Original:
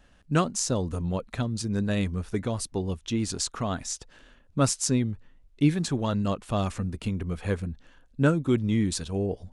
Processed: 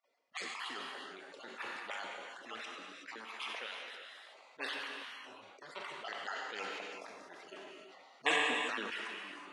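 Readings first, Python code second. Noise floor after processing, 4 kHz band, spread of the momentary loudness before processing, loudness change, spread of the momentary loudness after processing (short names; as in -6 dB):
-62 dBFS, -4.0 dB, 8 LU, -12.0 dB, 17 LU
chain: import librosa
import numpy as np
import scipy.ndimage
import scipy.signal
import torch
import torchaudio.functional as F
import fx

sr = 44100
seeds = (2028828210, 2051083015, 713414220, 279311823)

y = fx.spec_dropout(x, sr, seeds[0], share_pct=37)
y = scipy.signal.sosfilt(scipy.signal.butter(4, 940.0, 'highpass', fs=sr, output='sos'), y)
y = fx.spec_gate(y, sr, threshold_db=-20, keep='weak')
y = fx.env_lowpass(y, sr, base_hz=1600.0, full_db=-34.0)
y = fx.rider(y, sr, range_db=4, speed_s=0.5)
y = fx.rotary_switch(y, sr, hz=1.1, then_hz=6.0, switch_at_s=4.37)
y = fx.rev_gated(y, sr, seeds[1], gate_ms=400, shape='flat', drr_db=4.0)
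y = fx.sustainer(y, sr, db_per_s=21.0)
y = y * librosa.db_to_amplitude(16.0)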